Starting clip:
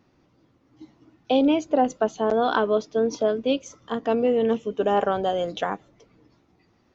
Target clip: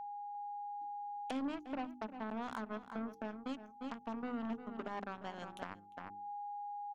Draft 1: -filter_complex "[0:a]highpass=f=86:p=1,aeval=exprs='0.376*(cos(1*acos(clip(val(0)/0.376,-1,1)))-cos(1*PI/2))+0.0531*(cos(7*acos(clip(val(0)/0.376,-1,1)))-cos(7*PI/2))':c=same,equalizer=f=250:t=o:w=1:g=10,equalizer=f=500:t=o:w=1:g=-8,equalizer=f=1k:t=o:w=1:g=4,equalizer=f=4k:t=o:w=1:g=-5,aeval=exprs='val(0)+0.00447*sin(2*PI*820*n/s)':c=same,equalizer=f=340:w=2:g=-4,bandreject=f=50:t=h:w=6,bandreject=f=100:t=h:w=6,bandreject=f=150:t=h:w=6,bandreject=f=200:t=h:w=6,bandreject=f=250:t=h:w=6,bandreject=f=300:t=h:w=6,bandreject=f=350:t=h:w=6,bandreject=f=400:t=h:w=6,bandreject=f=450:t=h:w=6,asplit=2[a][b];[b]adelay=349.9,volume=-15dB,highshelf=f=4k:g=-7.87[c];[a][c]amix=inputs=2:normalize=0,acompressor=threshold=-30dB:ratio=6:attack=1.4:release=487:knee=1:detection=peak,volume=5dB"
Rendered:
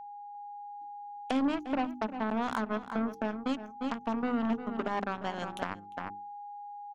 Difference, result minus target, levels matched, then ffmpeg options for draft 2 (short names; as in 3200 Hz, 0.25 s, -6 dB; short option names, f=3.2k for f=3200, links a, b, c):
compressor: peak gain reduction -10 dB
-filter_complex "[0:a]highpass=f=86:p=1,aeval=exprs='0.376*(cos(1*acos(clip(val(0)/0.376,-1,1)))-cos(1*PI/2))+0.0531*(cos(7*acos(clip(val(0)/0.376,-1,1)))-cos(7*PI/2))':c=same,equalizer=f=250:t=o:w=1:g=10,equalizer=f=500:t=o:w=1:g=-8,equalizer=f=1k:t=o:w=1:g=4,equalizer=f=4k:t=o:w=1:g=-5,aeval=exprs='val(0)+0.00447*sin(2*PI*820*n/s)':c=same,equalizer=f=340:w=2:g=-4,bandreject=f=50:t=h:w=6,bandreject=f=100:t=h:w=6,bandreject=f=150:t=h:w=6,bandreject=f=200:t=h:w=6,bandreject=f=250:t=h:w=6,bandreject=f=300:t=h:w=6,bandreject=f=350:t=h:w=6,bandreject=f=400:t=h:w=6,bandreject=f=450:t=h:w=6,asplit=2[a][b];[b]adelay=349.9,volume=-15dB,highshelf=f=4k:g=-7.87[c];[a][c]amix=inputs=2:normalize=0,acompressor=threshold=-42dB:ratio=6:attack=1.4:release=487:knee=1:detection=peak,volume=5dB"